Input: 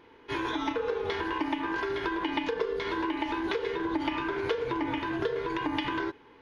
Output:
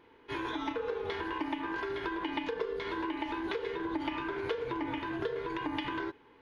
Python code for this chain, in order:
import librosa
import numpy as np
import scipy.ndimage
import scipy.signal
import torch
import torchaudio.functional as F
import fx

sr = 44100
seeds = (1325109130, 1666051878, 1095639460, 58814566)

y = fx.peak_eq(x, sr, hz=5700.0, db=-4.0, octaves=0.61)
y = y * librosa.db_to_amplitude(-4.5)